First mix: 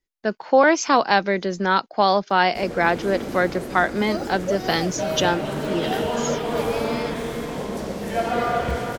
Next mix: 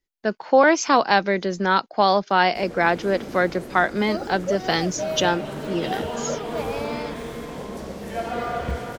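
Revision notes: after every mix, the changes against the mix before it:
first sound −5.0 dB
second sound: add parametric band 12,000 Hz −12 dB 1.4 octaves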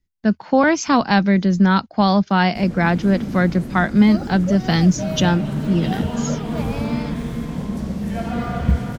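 speech: add parametric band 81 Hz +12 dB 0.37 octaves
master: add low shelf with overshoot 290 Hz +11 dB, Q 1.5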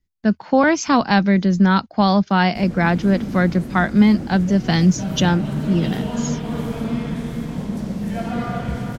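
second sound −12.0 dB

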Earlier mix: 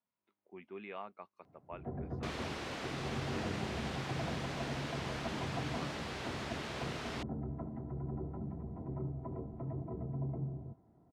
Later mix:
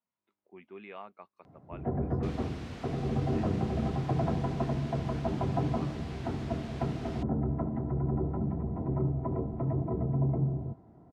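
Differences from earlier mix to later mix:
first sound +10.0 dB
second sound −6.5 dB

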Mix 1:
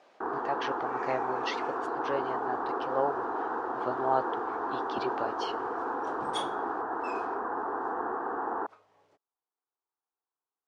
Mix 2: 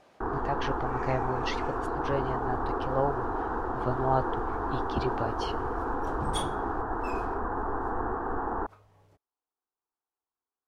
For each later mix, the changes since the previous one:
master: remove band-pass filter 330–6,700 Hz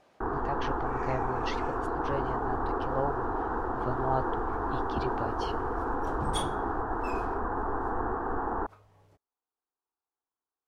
speech −3.5 dB

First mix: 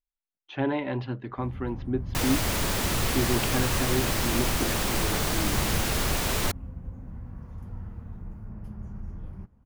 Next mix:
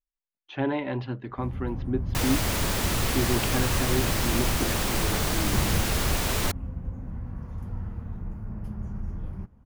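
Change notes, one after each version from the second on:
first sound +4.5 dB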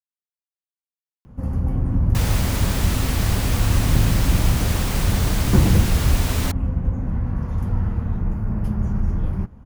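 speech: muted
first sound +12.0 dB

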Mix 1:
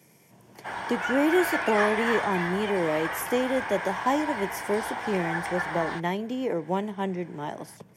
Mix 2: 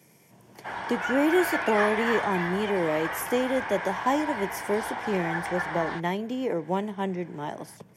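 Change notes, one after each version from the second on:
background: add high-frequency loss of the air 57 metres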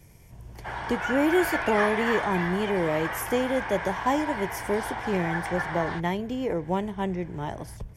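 speech: remove high-pass filter 170 Hz 24 dB per octave

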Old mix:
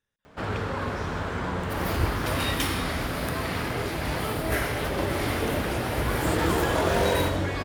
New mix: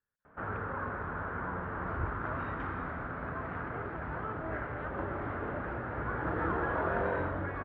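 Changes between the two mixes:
second sound −5.5 dB
master: add transistor ladder low-pass 1,700 Hz, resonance 50%

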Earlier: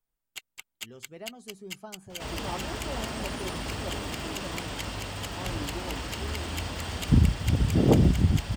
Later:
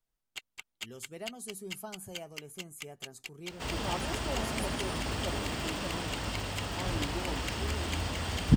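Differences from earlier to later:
speech: remove high-frequency loss of the air 110 metres
first sound: add high-shelf EQ 9,000 Hz −11.5 dB
second sound: entry +1.40 s

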